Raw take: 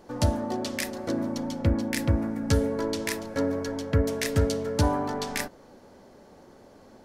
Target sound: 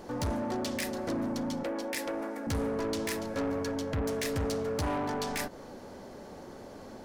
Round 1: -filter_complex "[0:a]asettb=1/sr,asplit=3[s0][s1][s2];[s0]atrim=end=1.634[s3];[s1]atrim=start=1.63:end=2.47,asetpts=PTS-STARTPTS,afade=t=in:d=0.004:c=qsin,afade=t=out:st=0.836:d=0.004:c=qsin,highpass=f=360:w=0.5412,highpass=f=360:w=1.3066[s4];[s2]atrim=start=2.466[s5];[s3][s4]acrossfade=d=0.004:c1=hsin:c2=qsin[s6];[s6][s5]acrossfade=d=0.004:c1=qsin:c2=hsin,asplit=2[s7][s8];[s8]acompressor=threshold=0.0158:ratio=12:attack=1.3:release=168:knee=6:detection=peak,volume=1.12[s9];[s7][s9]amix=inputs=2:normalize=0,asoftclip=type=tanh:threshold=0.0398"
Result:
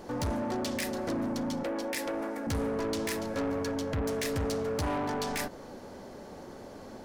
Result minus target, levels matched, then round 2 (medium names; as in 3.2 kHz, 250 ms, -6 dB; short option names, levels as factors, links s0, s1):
compression: peak gain reduction -7.5 dB
-filter_complex "[0:a]asettb=1/sr,asplit=3[s0][s1][s2];[s0]atrim=end=1.634[s3];[s1]atrim=start=1.63:end=2.47,asetpts=PTS-STARTPTS,afade=t=in:d=0.004:c=qsin,afade=t=out:st=0.836:d=0.004:c=qsin,highpass=f=360:w=0.5412,highpass=f=360:w=1.3066[s4];[s2]atrim=start=2.466[s5];[s3][s4]acrossfade=d=0.004:c1=hsin:c2=qsin[s6];[s6][s5]acrossfade=d=0.004:c1=qsin:c2=hsin,asplit=2[s7][s8];[s8]acompressor=threshold=0.00631:ratio=12:attack=1.3:release=168:knee=6:detection=peak,volume=1.12[s9];[s7][s9]amix=inputs=2:normalize=0,asoftclip=type=tanh:threshold=0.0398"